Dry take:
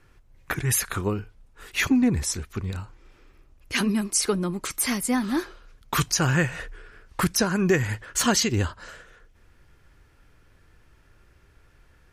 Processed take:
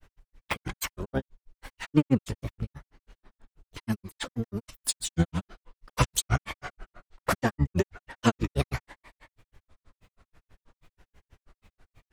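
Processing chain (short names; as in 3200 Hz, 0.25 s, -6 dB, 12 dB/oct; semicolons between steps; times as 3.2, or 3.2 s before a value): harmoniser -12 st -3 dB, +7 st -15 dB; grains 93 ms, grains 6.2/s, pitch spread up and down by 7 st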